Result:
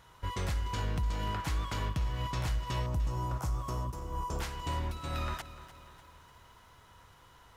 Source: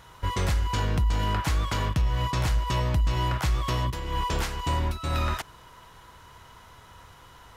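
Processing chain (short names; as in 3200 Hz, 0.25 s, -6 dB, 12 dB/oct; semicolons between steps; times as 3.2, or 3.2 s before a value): 2.86–4.4 band shelf 2700 Hz -13 dB; lo-fi delay 0.297 s, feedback 55%, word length 9-bit, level -14.5 dB; gain -8 dB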